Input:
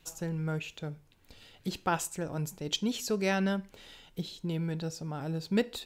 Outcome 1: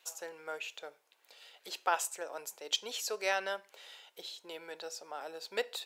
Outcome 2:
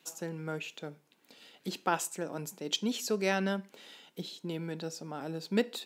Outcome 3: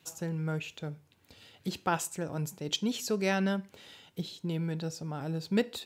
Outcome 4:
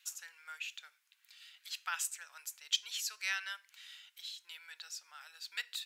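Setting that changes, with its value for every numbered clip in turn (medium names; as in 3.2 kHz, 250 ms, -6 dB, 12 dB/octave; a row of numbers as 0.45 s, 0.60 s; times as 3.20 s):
high-pass, cutoff frequency: 510 Hz, 200 Hz, 73 Hz, 1.5 kHz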